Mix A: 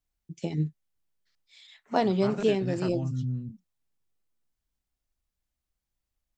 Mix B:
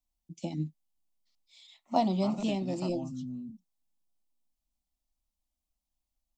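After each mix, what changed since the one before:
master: add static phaser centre 430 Hz, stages 6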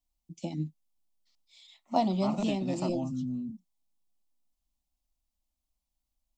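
second voice +5.0 dB

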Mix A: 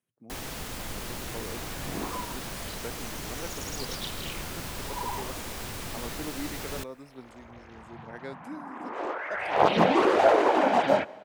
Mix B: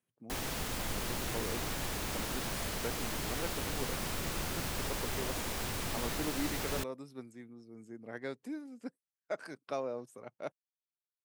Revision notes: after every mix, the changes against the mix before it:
second sound: muted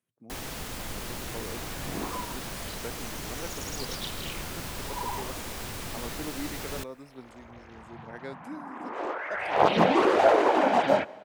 second sound: unmuted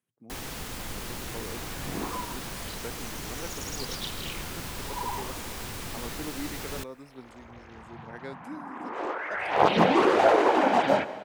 second sound: send +8.5 dB; master: add peaking EQ 620 Hz -3 dB 0.33 oct

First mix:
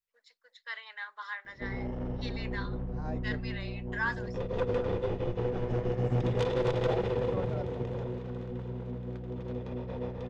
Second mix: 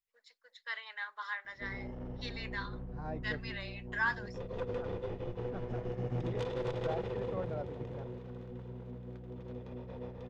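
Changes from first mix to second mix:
second voice: add distance through air 180 m; background -7.5 dB

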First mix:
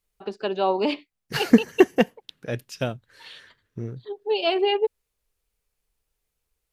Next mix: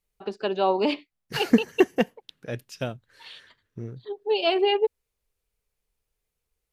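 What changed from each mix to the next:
second voice -3.5 dB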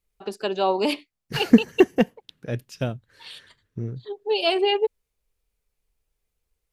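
first voice: remove distance through air 140 m; second voice: add bass shelf 320 Hz +7.5 dB

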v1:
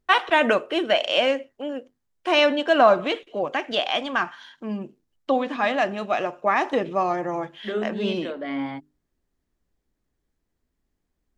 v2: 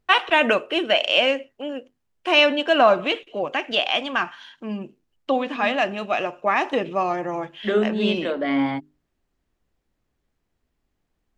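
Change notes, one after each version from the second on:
first voice: add peaking EQ 2.7 kHz +7 dB 0.39 oct; second voice +7.0 dB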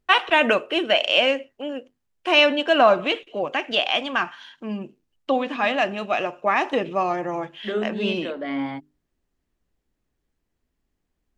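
second voice -5.5 dB

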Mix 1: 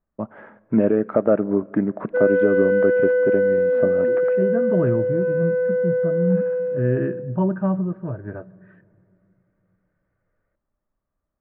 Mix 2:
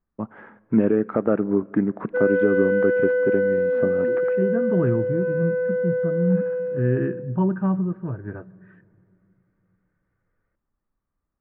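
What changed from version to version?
master: add peaking EQ 610 Hz -10 dB 0.33 oct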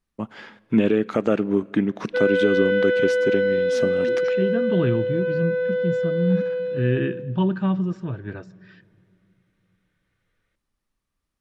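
master: remove low-pass 1.6 kHz 24 dB/octave

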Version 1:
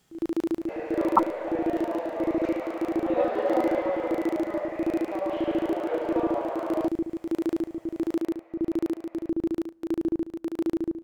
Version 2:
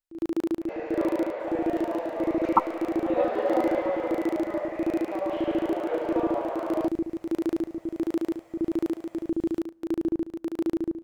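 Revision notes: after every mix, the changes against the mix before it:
speech: entry +1.40 s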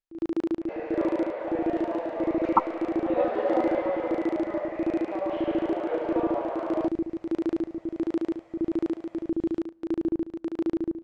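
master: add distance through air 97 m

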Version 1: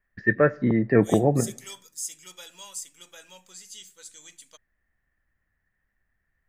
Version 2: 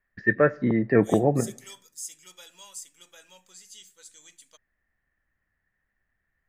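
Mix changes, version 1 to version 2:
second voice -4.0 dB; master: add bass shelf 140 Hz -4.5 dB

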